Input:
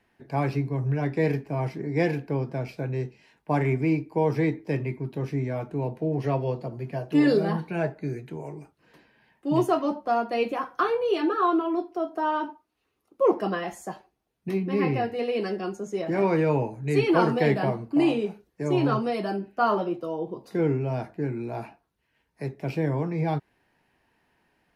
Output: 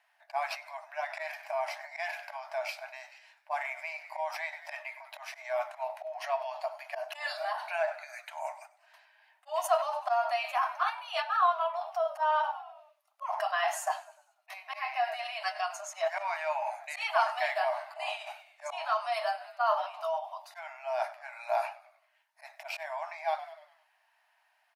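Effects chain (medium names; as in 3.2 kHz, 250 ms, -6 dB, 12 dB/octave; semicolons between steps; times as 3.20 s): gate -44 dBFS, range -8 dB; slow attack 130 ms; frequency-shifting echo 98 ms, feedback 56%, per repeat -63 Hz, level -19 dB; in parallel at 0 dB: compressor with a negative ratio -32 dBFS, ratio -0.5; on the sum: brick-wall FIR high-pass 590 Hz; trim -1.5 dB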